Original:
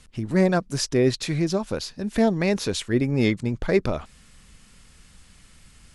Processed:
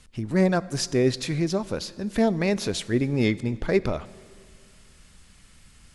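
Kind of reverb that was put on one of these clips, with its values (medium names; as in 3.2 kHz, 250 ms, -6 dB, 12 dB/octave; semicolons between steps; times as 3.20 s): plate-style reverb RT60 2.1 s, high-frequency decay 0.85×, DRR 17.5 dB; trim -1.5 dB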